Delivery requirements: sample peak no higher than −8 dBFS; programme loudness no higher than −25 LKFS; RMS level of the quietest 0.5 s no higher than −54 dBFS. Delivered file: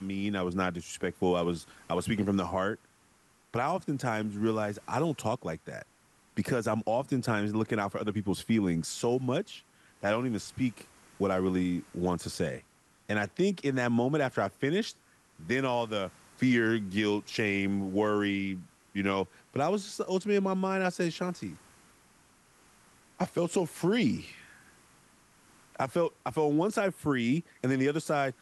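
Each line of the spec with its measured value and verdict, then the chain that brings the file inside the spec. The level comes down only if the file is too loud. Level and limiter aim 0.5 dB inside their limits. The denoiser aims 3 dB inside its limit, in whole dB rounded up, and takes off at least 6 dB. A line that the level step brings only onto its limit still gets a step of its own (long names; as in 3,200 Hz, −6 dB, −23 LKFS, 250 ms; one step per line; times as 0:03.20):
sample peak −17.5 dBFS: in spec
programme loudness −31.0 LKFS: in spec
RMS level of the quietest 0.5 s −65 dBFS: in spec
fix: no processing needed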